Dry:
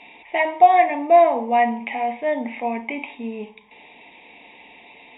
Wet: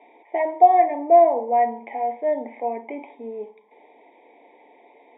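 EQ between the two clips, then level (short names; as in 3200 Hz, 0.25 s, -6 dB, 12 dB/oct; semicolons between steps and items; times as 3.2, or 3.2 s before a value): running mean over 32 samples; HPF 340 Hz 24 dB/oct; air absorption 140 m; +4.0 dB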